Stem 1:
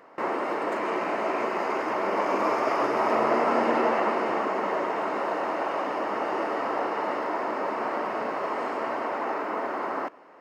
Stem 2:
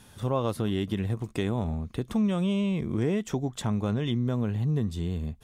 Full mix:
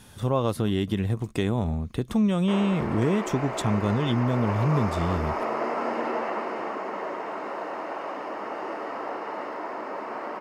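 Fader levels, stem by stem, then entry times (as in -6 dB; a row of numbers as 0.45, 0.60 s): -5.0, +3.0 dB; 2.30, 0.00 s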